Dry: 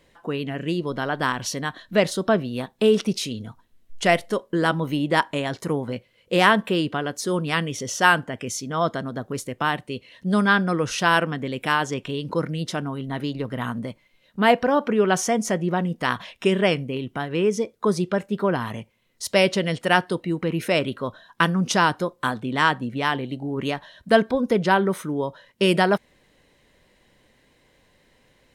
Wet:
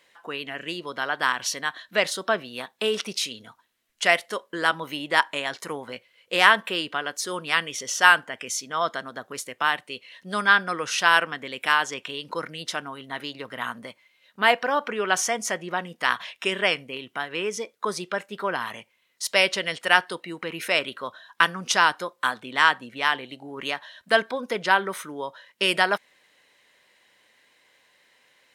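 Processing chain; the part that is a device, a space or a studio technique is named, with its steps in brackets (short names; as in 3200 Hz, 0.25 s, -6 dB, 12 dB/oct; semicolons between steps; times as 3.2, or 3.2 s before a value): filter by subtraction (in parallel: LPF 1700 Hz 12 dB/oct + phase invert); on the sum: gain +1 dB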